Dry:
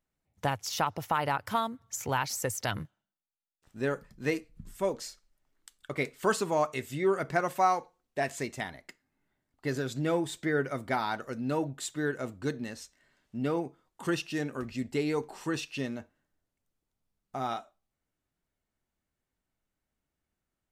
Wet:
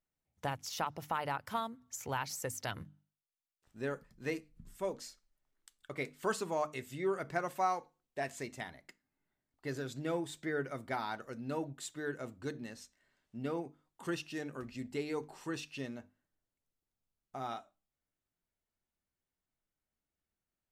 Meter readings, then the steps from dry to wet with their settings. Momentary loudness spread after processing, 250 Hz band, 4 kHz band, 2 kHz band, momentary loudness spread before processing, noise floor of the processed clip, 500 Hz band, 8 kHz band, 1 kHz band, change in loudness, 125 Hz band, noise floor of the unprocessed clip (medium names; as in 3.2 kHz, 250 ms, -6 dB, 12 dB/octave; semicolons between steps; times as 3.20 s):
11 LU, -7.5 dB, -7.0 dB, -7.0 dB, 11 LU, under -85 dBFS, -7.0 dB, -7.0 dB, -7.0 dB, -7.0 dB, -8.0 dB, under -85 dBFS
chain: hum notches 50/100/150/200/250/300 Hz; trim -7 dB